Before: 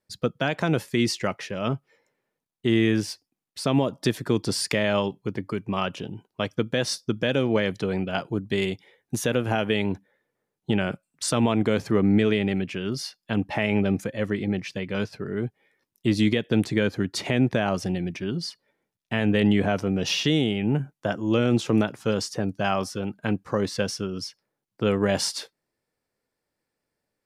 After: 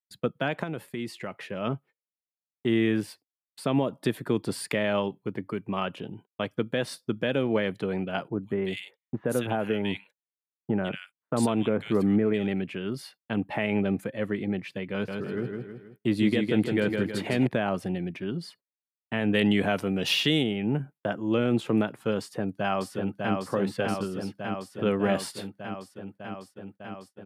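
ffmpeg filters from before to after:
ffmpeg -i in.wav -filter_complex "[0:a]asettb=1/sr,asplit=3[link_01][link_02][link_03];[link_01]atrim=end=0.634[link_04];[link_02]atrim=start=0.63:end=1.41,asetpts=PTS-STARTPTS,afade=type=in:duration=0.004:curve=qsin,afade=type=out:start_time=0.776:duration=0.004:curve=qsin,acompressor=threshold=-32dB:ratio=2:attack=3.2:release=140:knee=1:detection=peak[link_05];[link_03]atrim=start=1.406[link_06];[link_04][link_05]acrossfade=duration=0.004:curve1=hsin:curve2=qsin[link_07];[link_07][link_06]acrossfade=duration=0.004:curve1=qsin:curve2=hsin,asettb=1/sr,asplit=3[link_08][link_09][link_10];[link_08]atrim=end=8.284[link_11];[link_09]atrim=start=8.28:end=12.47,asetpts=PTS-STARTPTS,afade=type=in:duration=0.004:curve=qsin,afade=type=out:start_time=4.186:duration=0.004:curve=qsin,acrossover=split=1800[link_12][link_13];[link_13]adelay=150[link_14];[link_12][link_14]amix=inputs=2:normalize=0,atrim=end_sample=184779[link_15];[link_10]atrim=start=12.466[link_16];[link_11][link_15]acrossfade=duration=0.004:curve1=hsin:curve2=qsin[link_17];[link_17][link_16]acrossfade=duration=0.004:curve1=qsin:curve2=hsin,asettb=1/sr,asplit=3[link_18][link_19][link_20];[link_18]atrim=end=14.924[link_21];[link_19]atrim=start=14.92:end=17.47,asetpts=PTS-STARTPTS,afade=type=in:duration=0.004:curve=qsin,afade=type=out:start_time=2.546:duration=0.004:curve=qsin,aecho=1:1:159|318|477|636|795|954:0.596|0.274|0.126|0.058|0.0267|0.0123,atrim=end_sample=112455[link_22];[link_20]atrim=start=17.466[link_23];[link_21][link_22]acrossfade=duration=0.004:curve1=hsin:curve2=qsin[link_24];[link_24][link_23]acrossfade=duration=0.004:curve1=qsin:curve2=hsin,asettb=1/sr,asplit=3[link_25][link_26][link_27];[link_25]atrim=end=19.334[link_28];[link_26]atrim=start=19.33:end=20.43,asetpts=PTS-STARTPTS,afade=type=in:duration=0.004:curve=qsin,afade=type=out:start_time=1.096:duration=0.004:curve=qsin,highshelf=frequency=2400:gain=11[link_29];[link_27]atrim=start=20.426[link_30];[link_28][link_29]acrossfade=duration=0.004:curve1=hsin:curve2=qsin[link_31];[link_31][link_30]acrossfade=duration=0.004:curve1=qsin:curve2=hsin,asplit=2[link_32][link_33];[link_33]afade=type=in:start_time=22.2:duration=0.01,afade=type=out:start_time=23.34:duration=0.01,aecho=0:1:600|1200|1800|2400|3000|3600|4200|4800|5400|6000|6600|7200:0.668344|0.534675|0.42774|0.342192|0.273754|0.219003|0.175202|0.140162|0.11213|0.0897036|0.0717629|0.0574103[link_34];[link_32][link_34]amix=inputs=2:normalize=0,agate=range=-37dB:threshold=-44dB:ratio=16:detection=peak,highpass=120,equalizer=frequency=5800:width_type=o:width=0.77:gain=-14.5,volume=-2.5dB" out.wav

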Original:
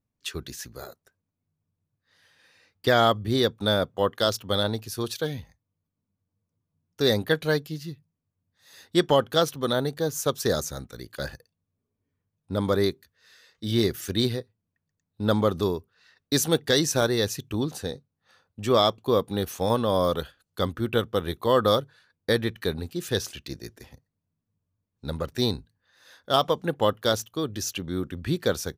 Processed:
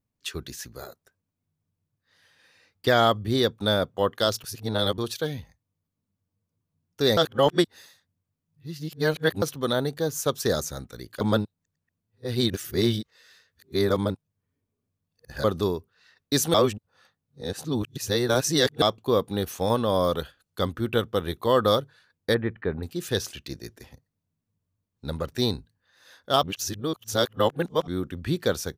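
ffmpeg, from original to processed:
ffmpeg -i in.wav -filter_complex "[0:a]asettb=1/sr,asplit=3[link_01][link_02][link_03];[link_01]atrim=end=22.344[link_04];[link_02]atrim=start=22.34:end=22.83,asetpts=PTS-STARTPTS,afade=type=in:duration=0.004:curve=qsin,afade=type=out:start_time=0.486:duration=0.004:curve=qsin,lowpass=frequency=2100:width=0.5412,lowpass=frequency=2100:width=1.3066[link_05];[link_03]atrim=start=22.826[link_06];[link_04][link_05]acrossfade=duration=0.004:curve1=hsin:curve2=qsin[link_07];[link_07][link_06]acrossfade=duration=0.004:curve1=qsin:curve2=hsin,asplit=11[link_08][link_09][link_10][link_11][link_12][link_13][link_14][link_15][link_16][link_17][link_18];[link_08]atrim=end=4.442[link_19];[link_09]atrim=start=4.438:end=4.982,asetpts=PTS-STARTPTS,areverse[link_20];[link_10]atrim=start=4.978:end=7.172[link_21];[link_11]atrim=start=7.168:end=9.422,asetpts=PTS-STARTPTS,areverse[link_22];[link_12]atrim=start=9.418:end=11.212[link_23];[link_13]atrim=start=11.208:end=15.442,asetpts=PTS-STARTPTS,areverse[link_24];[link_14]atrim=start=15.438:end=16.542[link_25];[link_15]atrim=start=16.538:end=18.822,asetpts=PTS-STARTPTS,areverse[link_26];[link_16]atrim=start=18.818:end=26.432[link_27];[link_17]atrim=start=26.428:end=27.872,asetpts=PTS-STARTPTS,areverse[link_28];[link_18]atrim=start=27.868[link_29];[link_19][link_20]acrossfade=duration=0.004:curve1=hsin:curve2=hsin[link_30];[link_30][link_21]acrossfade=duration=0.004:curve1=hsin:curve2=hsin[link_31];[link_31][link_22]acrossfade=duration=0.004:curve1=hsin:curve2=hsin[link_32];[link_32][link_23]acrossfade=duration=0.004:curve1=hsin:curve2=hsin[link_33];[link_33][link_24]acrossfade=duration=0.004:curve1=hsin:curve2=hsin[link_34];[link_34][link_25]acrossfade=duration=0.004:curve1=hsin:curve2=hsin[link_35];[link_35][link_26]acrossfade=duration=0.004:curve1=hsin:curve2=hsin[link_36];[link_36][link_27]acrossfade=duration=0.004:curve1=hsin:curve2=hsin[link_37];[link_37][link_28]acrossfade=duration=0.004:curve1=hsin:curve2=hsin[link_38];[link_38][link_29]acrossfade=duration=0.004:curve1=hsin:curve2=hsin" out.wav

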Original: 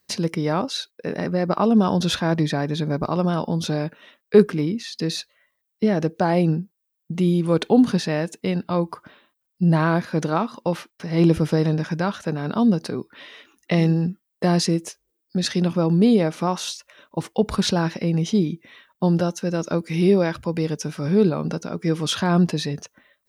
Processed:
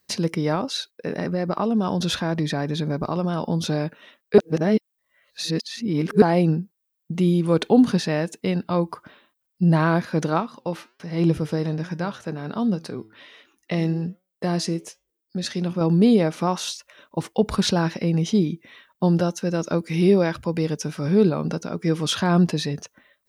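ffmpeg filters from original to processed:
ffmpeg -i in.wav -filter_complex "[0:a]asettb=1/sr,asplit=3[link_01][link_02][link_03];[link_01]atrim=end=0.554[link_04];[link_02]atrim=start=0.55:end=3.42,asetpts=PTS-STARTPTS,afade=type=in:duration=0.004:curve=qsin,afade=type=out:start_time=2.866:duration=0.004:curve=qsin,acompressor=threshold=-21dB:ratio=2:attack=3.2:release=140:knee=1:detection=peak[link_05];[link_03]atrim=start=3.416[link_06];[link_04][link_05]acrossfade=duration=0.004:curve1=hsin:curve2=qsin[link_07];[link_07][link_06]acrossfade=duration=0.004:curve1=qsin:curve2=hsin,asettb=1/sr,asplit=3[link_08][link_09][link_10];[link_08]atrim=end=10.404[link_11];[link_09]atrim=start=10.4:end=15.81,asetpts=PTS-STARTPTS,afade=type=in:duration=0.004:curve=qsin,afade=type=out:start_time=5.406:duration=0.004:curve=qsin,flanger=delay=5.3:depth=3.9:regen=88:speed=1.3:shape=sinusoidal[link_12];[link_10]atrim=start=15.806[link_13];[link_11][link_12]acrossfade=duration=0.004:curve1=hsin:curve2=qsin[link_14];[link_14][link_13]acrossfade=duration=0.004:curve1=qsin:curve2=hsin,asplit=3[link_15][link_16][link_17];[link_15]atrim=end=4.382[link_18];[link_16]atrim=start=4.378:end=6.222,asetpts=PTS-STARTPTS,areverse[link_19];[link_17]atrim=start=6.218[link_20];[link_18][link_19]acrossfade=duration=0.004:curve1=hsin:curve2=hsin[link_21];[link_21][link_20]acrossfade=duration=0.004:curve1=hsin:curve2=hsin" out.wav

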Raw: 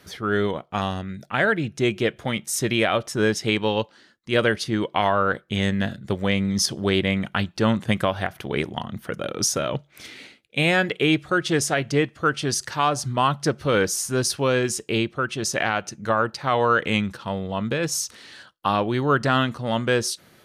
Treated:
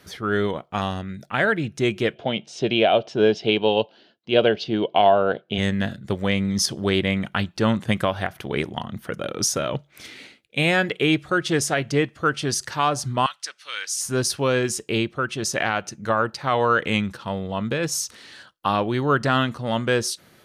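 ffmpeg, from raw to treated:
ffmpeg -i in.wav -filter_complex "[0:a]asplit=3[link_01][link_02][link_03];[link_01]afade=type=out:start_time=2.14:duration=0.02[link_04];[link_02]highpass=130,equalizer=frequency=420:width_type=q:width=4:gain=5,equalizer=frequency=680:width_type=q:width=4:gain=10,equalizer=frequency=1200:width_type=q:width=4:gain=-9,equalizer=frequency=1900:width_type=q:width=4:gain=-10,equalizer=frequency=2900:width_type=q:width=4:gain=6,lowpass=frequency=4600:width=0.5412,lowpass=frequency=4600:width=1.3066,afade=type=in:start_time=2.14:duration=0.02,afade=type=out:start_time=5.57:duration=0.02[link_05];[link_03]afade=type=in:start_time=5.57:duration=0.02[link_06];[link_04][link_05][link_06]amix=inputs=3:normalize=0,asettb=1/sr,asplit=3[link_07][link_08][link_09];[link_07]atrim=end=13.264[link_10];[link_08]atrim=start=13.26:end=14.01,asetpts=PTS-STARTPTS,afade=type=in:duration=0.004:curve=qsin,afade=type=out:start_time=0.746:duration=0.004:curve=qsin,asuperpass=centerf=4800:order=4:qfactor=0.59[link_11];[link_09]atrim=start=14.006[link_12];[link_10][link_11]acrossfade=duration=0.004:curve1=hsin:curve2=qsin[link_13];[link_13][link_12]acrossfade=duration=0.004:curve1=qsin:curve2=hsin" out.wav

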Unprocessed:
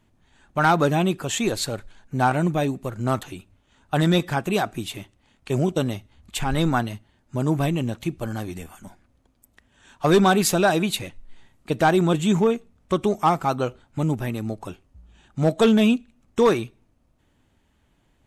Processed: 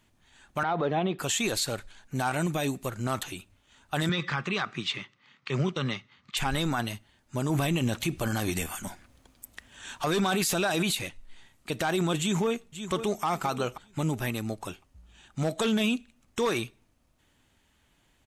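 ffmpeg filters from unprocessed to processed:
ffmpeg -i in.wav -filter_complex "[0:a]asettb=1/sr,asplit=3[link_01][link_02][link_03];[link_01]atrim=end=0.634[link_04];[link_02]atrim=start=0.63:end=1.19,asetpts=PTS-STARTPTS,afade=type=in:duration=0.004:curve=qsin,afade=type=out:start_time=0.556:duration=0.004:curve=qsin,highpass=frequency=130:width=0.5412,highpass=frequency=130:width=1.3066,equalizer=frequency=460:width_type=q:width=4:gain=7,equalizer=frequency=720:width_type=q:width=4:gain=6,equalizer=frequency=1500:width_type=q:width=4:gain=-4,equalizer=frequency=2600:width_type=q:width=4:gain=-7,lowpass=frequency=3300:width=0.5412,lowpass=frequency=3300:width=1.3066[link_05];[link_03]atrim=start=1.186[link_06];[link_04][link_05]acrossfade=duration=0.004:curve1=hsin:curve2=qsin[link_07];[link_07][link_06]acrossfade=duration=0.004:curve1=qsin:curve2=hsin,asettb=1/sr,asplit=3[link_08][link_09][link_10];[link_08]atrim=end=2.154[link_11];[link_09]atrim=start=2.15:end=2.86,asetpts=PTS-STARTPTS,afade=type=in:duration=0.004:curve=qsin,afade=type=out:start_time=0.706:duration=0.004:curve=qsin,highshelf=frequency=5400:gain=5[link_12];[link_10]atrim=start=2.856[link_13];[link_11][link_12]acrossfade=duration=0.004:curve1=hsin:curve2=qsin[link_14];[link_14][link_13]acrossfade=duration=0.004:curve1=qsin:curve2=hsin,asettb=1/sr,asplit=3[link_15][link_16][link_17];[link_15]atrim=end=4.094[link_18];[link_16]atrim=start=4.09:end=6.37,asetpts=PTS-STARTPTS,afade=type=in:duration=0.004:curve=qsin,afade=type=out:start_time=2.276:duration=0.004:curve=qsin,highpass=frequency=130:width=0.5412,highpass=frequency=130:width=1.3066,equalizer=frequency=140:width_type=q:width=4:gain=7,equalizer=frequency=300:width_type=q:width=4:gain=-5,equalizer=frequency=680:width_type=q:width=4:gain=-9,equalizer=frequency=1200:width_type=q:width=4:gain=9,equalizer=frequency=2000:width_type=q:width=4:gain=6,lowpass=frequency=5300:width=0.5412,lowpass=frequency=5300:width=1.3066[link_19];[link_17]atrim=start=6.366[link_20];[link_18][link_19]acrossfade=duration=0.004:curve1=hsin:curve2=qsin[link_21];[link_21][link_20]acrossfade=duration=0.004:curve1=qsin:curve2=hsin,asplit=2[link_22][link_23];[link_23]afade=type=in:start_time=12.19:duration=0.01,afade=type=out:start_time=13.24:duration=0.01,aecho=0:1:530|1060|1590:0.188365|0.0470912|0.0117728[link_24];[link_22][link_24]amix=inputs=2:normalize=0,asplit=3[link_25][link_26][link_27];[link_25]atrim=end=7.502[link_28];[link_26]atrim=start=7.498:end=10.952,asetpts=PTS-STARTPTS,volume=8dB[link_29];[link_27]atrim=start=10.948[link_30];[link_28][link_29]acrossfade=duration=0.004:curve1=hsin:curve2=hsin[link_31];[link_31][link_30]acrossfade=duration=0.004:curve1=hsin:curve2=hsin,tiltshelf=frequency=1200:gain=-5,alimiter=limit=-18.5dB:level=0:latency=1:release=42" out.wav

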